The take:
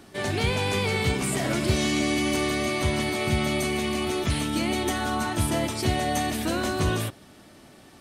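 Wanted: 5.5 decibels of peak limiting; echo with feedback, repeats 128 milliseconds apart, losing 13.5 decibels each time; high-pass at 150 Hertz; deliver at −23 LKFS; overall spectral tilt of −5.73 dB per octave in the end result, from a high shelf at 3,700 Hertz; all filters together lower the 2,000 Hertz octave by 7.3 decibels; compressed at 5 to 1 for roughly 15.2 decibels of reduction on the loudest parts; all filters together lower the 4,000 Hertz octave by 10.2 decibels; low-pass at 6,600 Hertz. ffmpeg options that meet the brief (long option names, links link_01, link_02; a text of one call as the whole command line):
ffmpeg -i in.wav -af "highpass=150,lowpass=6600,equalizer=frequency=2000:width_type=o:gain=-5.5,highshelf=frequency=3700:gain=-4,equalizer=frequency=4000:width_type=o:gain=-8.5,acompressor=threshold=-41dB:ratio=5,alimiter=level_in=11.5dB:limit=-24dB:level=0:latency=1,volume=-11.5dB,aecho=1:1:128|256:0.211|0.0444,volume=21.5dB" out.wav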